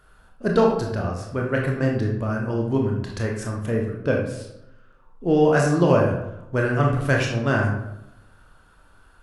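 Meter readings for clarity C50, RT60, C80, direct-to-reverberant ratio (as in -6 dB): 3.5 dB, 0.85 s, 7.5 dB, -0.5 dB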